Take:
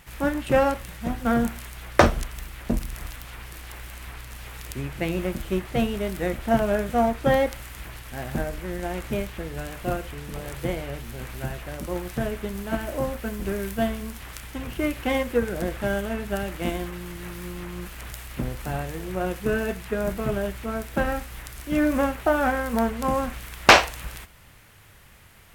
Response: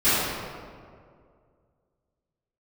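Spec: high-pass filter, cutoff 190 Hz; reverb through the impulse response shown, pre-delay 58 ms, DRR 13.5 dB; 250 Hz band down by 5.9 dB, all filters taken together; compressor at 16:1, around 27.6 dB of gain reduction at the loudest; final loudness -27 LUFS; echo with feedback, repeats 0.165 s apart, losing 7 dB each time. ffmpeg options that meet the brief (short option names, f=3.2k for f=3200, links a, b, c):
-filter_complex "[0:a]highpass=190,equalizer=f=250:t=o:g=-5.5,acompressor=threshold=-36dB:ratio=16,aecho=1:1:165|330|495|660|825:0.447|0.201|0.0905|0.0407|0.0183,asplit=2[a][b];[1:a]atrim=start_sample=2205,adelay=58[c];[b][c]afir=irnorm=-1:irlink=0,volume=-32.5dB[d];[a][d]amix=inputs=2:normalize=0,volume=13dB"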